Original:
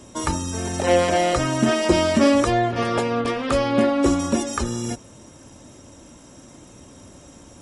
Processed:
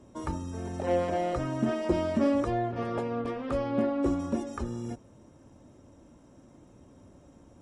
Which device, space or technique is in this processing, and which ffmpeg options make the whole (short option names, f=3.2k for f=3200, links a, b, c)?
through cloth: -af "highshelf=f=1.9k:g=-15,volume=-8dB"